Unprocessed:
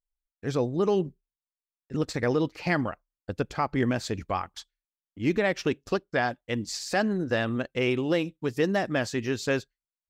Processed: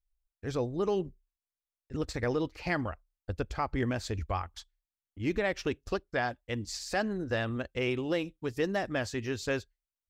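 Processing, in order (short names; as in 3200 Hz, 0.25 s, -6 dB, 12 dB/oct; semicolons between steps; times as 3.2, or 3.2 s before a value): resonant low shelf 100 Hz +12.5 dB, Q 1.5; gain -4.5 dB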